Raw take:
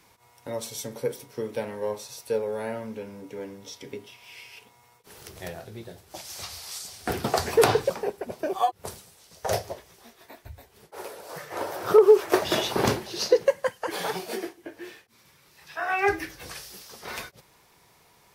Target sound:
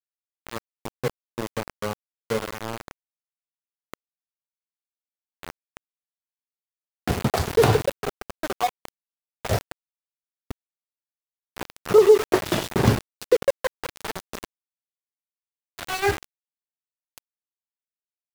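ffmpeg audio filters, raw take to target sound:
-filter_complex "[0:a]bass=f=250:g=12,treble=f=4k:g=-6,asplit=2[a][b];[b]adelay=97,lowpass=f=1.5k:p=1,volume=-14dB,asplit=2[c][d];[d]adelay=97,lowpass=f=1.5k:p=1,volume=0.2[e];[a][c][e]amix=inputs=3:normalize=0,aeval=exprs='val(0)*gte(abs(val(0)),0.075)':c=same"

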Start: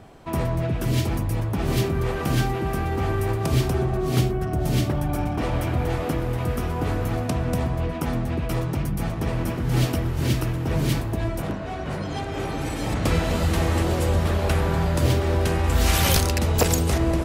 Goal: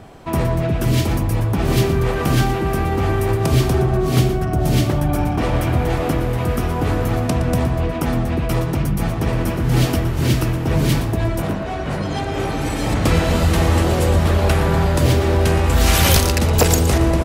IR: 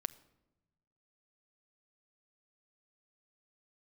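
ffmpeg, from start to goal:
-filter_complex "[0:a]acontrast=50,asplit=2[a][b];[b]aecho=0:1:117:0.237[c];[a][c]amix=inputs=2:normalize=0"

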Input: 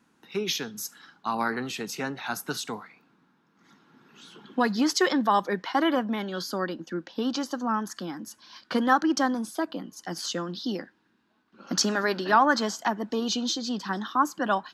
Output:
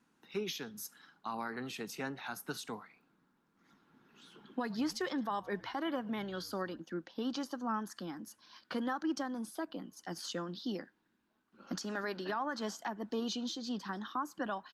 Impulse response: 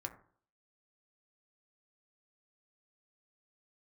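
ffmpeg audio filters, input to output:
-filter_complex "[0:a]asplit=3[a][b][c];[a]afade=t=out:st=4.59:d=0.02[d];[b]asplit=3[e][f][g];[f]adelay=107,afreqshift=-80,volume=-23dB[h];[g]adelay=214,afreqshift=-160,volume=-32.1dB[i];[e][h][i]amix=inputs=3:normalize=0,afade=t=in:st=4.59:d=0.02,afade=t=out:st=6.79:d=0.02[j];[c]afade=t=in:st=6.79:d=0.02[k];[d][j][k]amix=inputs=3:normalize=0,alimiter=limit=-19dB:level=0:latency=1:release=205,volume=-7.5dB" -ar 48000 -c:a libopus -b:a 48k

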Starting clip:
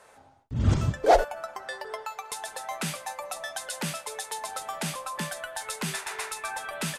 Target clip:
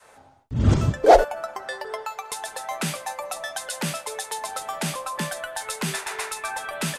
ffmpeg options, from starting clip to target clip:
-af "adynamicequalizer=threshold=0.0141:dfrequency=370:dqfactor=0.71:tfrequency=370:tqfactor=0.71:attack=5:release=100:ratio=0.375:range=2:mode=boostabove:tftype=bell,volume=3.5dB"

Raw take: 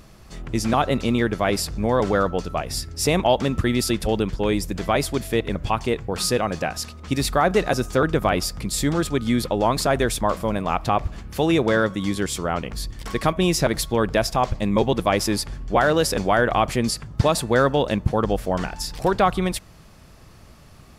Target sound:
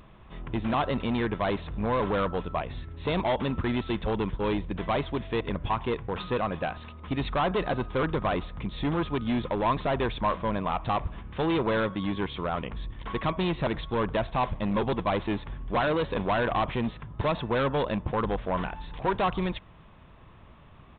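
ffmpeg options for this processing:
-af "aresample=8000,asoftclip=type=hard:threshold=-18.5dB,aresample=44100,equalizer=f=1k:w=5:g=8,volume=-4.5dB"

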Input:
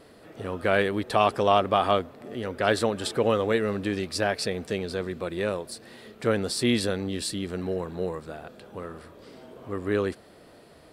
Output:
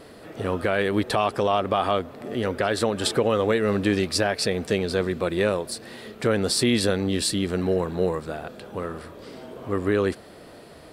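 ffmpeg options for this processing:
-af "alimiter=limit=-17dB:level=0:latency=1:release=209,volume=6.5dB"

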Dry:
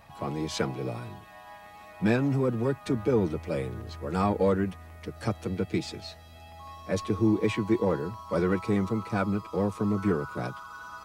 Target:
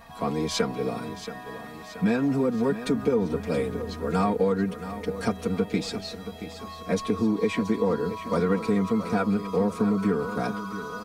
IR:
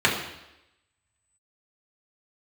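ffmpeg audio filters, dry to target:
-filter_complex "[0:a]equalizer=f=2.8k:w=6.1:g=-4,aecho=1:1:4.3:0.71,acompressor=threshold=-24dB:ratio=5,asplit=2[a][b];[b]aecho=0:1:677|1354|2031|2708|3385:0.251|0.128|0.0653|0.0333|0.017[c];[a][c]amix=inputs=2:normalize=0,volume=4dB"

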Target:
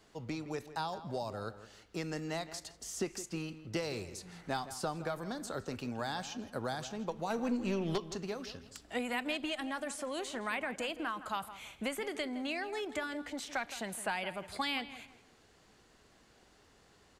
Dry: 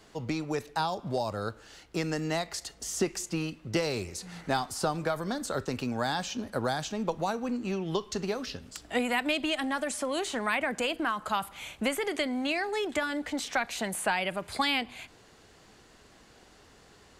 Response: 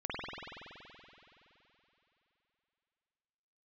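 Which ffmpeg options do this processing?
-filter_complex "[0:a]asettb=1/sr,asplit=3[a][b][c];[a]atrim=end=7.304[d];[b]atrim=start=7.3:end=7.98,asetpts=PTS-STARTPTS,afade=t=in:d=0.004:c=qsin,afade=t=out:st=0.676:d=0.004:c=qsin,aeval=exprs='0.158*(cos(1*acos(clip(val(0)/0.158,-1,1)))-cos(1*PI/2))+0.0224*(cos(4*acos(clip(val(0)/0.158,-1,1)))-cos(4*PI/2))+0.0398*(cos(5*acos(clip(val(0)/0.158,-1,1)))-cos(5*PI/2))':c=same[e];[c]atrim=start=7.976[f];[d][e]acrossfade=d=0.004:c1=hsin:c2=qsin[g];[g][f]acrossfade=d=0.004:c1=qsin:c2=hsin,asplit=2[h][i];[i]adelay=165,lowpass=f=2.8k:p=1,volume=-13dB,asplit=2[j][k];[k]adelay=165,lowpass=f=2.8k:p=1,volume=0.31,asplit=2[l][m];[m]adelay=165,lowpass=f=2.8k:p=1,volume=0.31[n];[h][j][l][n]amix=inputs=4:normalize=0,volume=-7.5dB"

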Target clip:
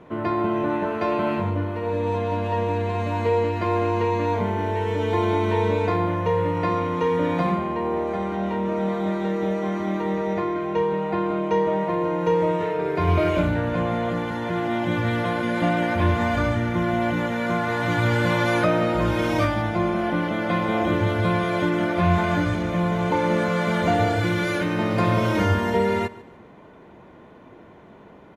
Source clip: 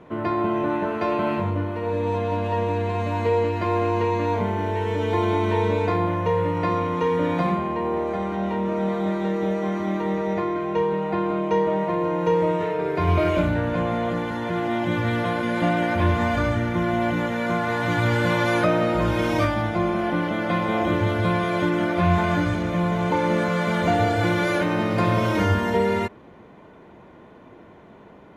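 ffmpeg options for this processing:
-filter_complex "[0:a]asettb=1/sr,asplit=3[a][b][c];[a]atrim=end=24.194[d];[b]atrim=start=24.19:end=24.79,asetpts=PTS-STARTPTS,afade=t=in:d=0.004:c=qsin,afade=t=out:st=0.596:d=0.004:c=qsin,equalizer=f=750:t=o:w=1.3:g=-6[e];[c]atrim=start=24.786[f];[d][e]acrossfade=d=0.004:c1=hsin:c2=qsin[g];[g][f]acrossfade=d=0.004:c1=qsin:c2=hsin,aecho=1:1:145|290|435:0.1|0.035|0.0123"

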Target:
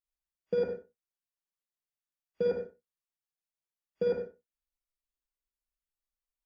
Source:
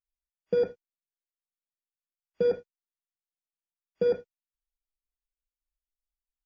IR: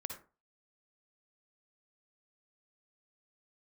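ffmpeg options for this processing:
-filter_complex "[1:a]atrim=start_sample=2205,afade=t=out:st=0.29:d=0.01,atrim=end_sample=13230,asetrate=48510,aresample=44100[a];[0:a][a]afir=irnorm=-1:irlink=0"

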